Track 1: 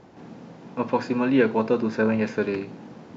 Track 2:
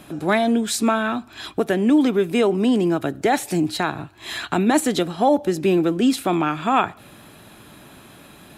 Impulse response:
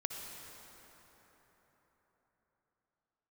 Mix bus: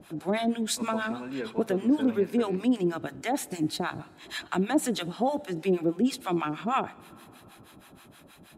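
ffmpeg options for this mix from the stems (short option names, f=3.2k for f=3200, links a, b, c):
-filter_complex "[0:a]volume=-15.5dB[a];[1:a]acrossover=split=750[b][c];[b]aeval=exprs='val(0)*(1-1/2+1/2*cos(2*PI*6.3*n/s))':c=same[d];[c]aeval=exprs='val(0)*(1-1/2-1/2*cos(2*PI*6.3*n/s))':c=same[e];[d][e]amix=inputs=2:normalize=0,volume=-4.5dB,asplit=2[f][g];[g]volume=-19.5dB[h];[2:a]atrim=start_sample=2205[i];[h][i]afir=irnorm=-1:irlink=0[j];[a][f][j]amix=inputs=3:normalize=0"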